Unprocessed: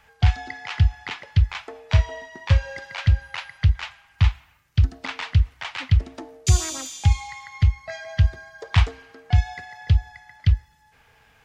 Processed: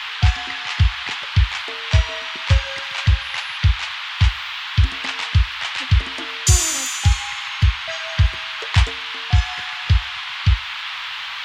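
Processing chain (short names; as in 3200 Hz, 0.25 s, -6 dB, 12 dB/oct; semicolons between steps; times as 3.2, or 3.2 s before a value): band noise 910–3500 Hz -33 dBFS; high shelf 4800 Hz +12 dB; gain +1.5 dB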